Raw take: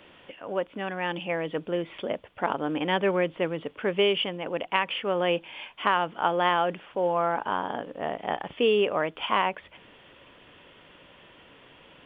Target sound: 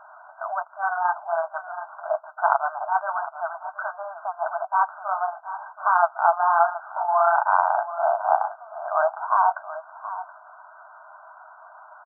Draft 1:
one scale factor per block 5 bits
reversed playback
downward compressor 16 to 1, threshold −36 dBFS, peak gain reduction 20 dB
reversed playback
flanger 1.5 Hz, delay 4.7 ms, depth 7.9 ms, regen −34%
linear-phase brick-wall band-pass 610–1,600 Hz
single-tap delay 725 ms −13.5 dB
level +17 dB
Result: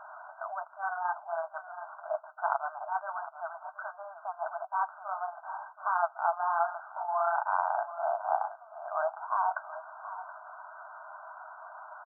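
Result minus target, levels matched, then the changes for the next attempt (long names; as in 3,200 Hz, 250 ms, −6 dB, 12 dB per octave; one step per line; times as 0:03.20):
downward compressor: peak gain reduction +10 dB
change: downward compressor 16 to 1, threshold −25.5 dBFS, peak gain reduction 10 dB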